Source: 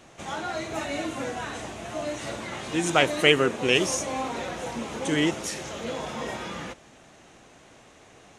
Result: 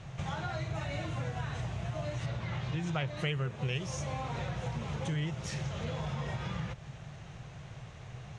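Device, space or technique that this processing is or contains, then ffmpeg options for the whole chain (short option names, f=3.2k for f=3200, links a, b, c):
jukebox: -filter_complex "[0:a]asettb=1/sr,asplit=3[a][b][c];[a]atrim=end=2.264[d];[b]atrim=start=2.26:end=3.17,asetpts=PTS-STARTPTS,afade=t=in:d=0.004:c=qsin,afade=t=out:st=0.906:d=0.004:c=qsin,lowpass=5.9k[e];[c]atrim=start=3.166[f];[d][e]acrossfade=d=0.004:c1=hsin:c2=qsin[g];[g][f]acrossfade=d=0.004:c1=qsin:c2=hsin,lowpass=5.4k,lowshelf=f=190:t=q:w=3:g=11.5,acompressor=threshold=-34dB:ratio=4"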